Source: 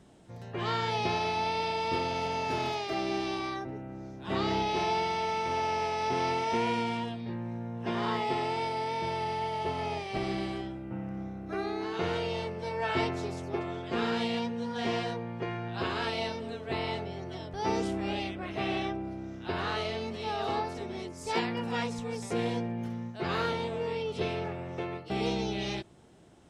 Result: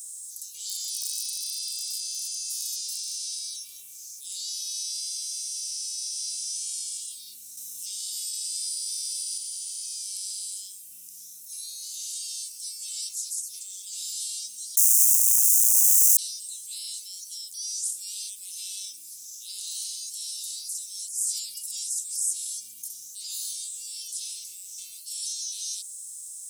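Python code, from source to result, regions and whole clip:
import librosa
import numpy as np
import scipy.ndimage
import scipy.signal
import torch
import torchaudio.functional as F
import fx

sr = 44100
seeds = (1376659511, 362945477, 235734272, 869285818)

y = fx.chain(x, sr, fx.echo_bbd(ms=232, stages=4096, feedback_pct=61, wet_db=-9.0),
    fx.clip_hard(threshold_db=-22.5), at=(0.69, 4.33))
y = fx.chain(y, sr, fx.highpass(hz=350.0, slope=12),
    fx.peak_eq(hz=1100.0, db=-9.0, octaves=0.33), at=(5.33, 6.32))
y = fx.chain(y, sr, fx.highpass(hz=130.0, slope=12),
    fx.env_flatten(amount_pct=100), at=(7.57, 9.38))
y = fx.chain(y, sr, fx.clip_1bit(),
    fx.highpass(hz=1200.0, slope=12),
    fx.high_shelf_res(hz=4700.0, db=9.0, q=3.0), at=(14.77, 16.17))
y = scipy.signal.sosfilt(scipy.signal.cheby2(4, 70, 1900.0, 'highpass', fs=sr, output='sos'), y)
y = fx.tilt_eq(y, sr, slope=2.0)
y = fx.env_flatten(y, sr, amount_pct=50)
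y = F.gain(torch.from_numpy(y), 9.0).numpy()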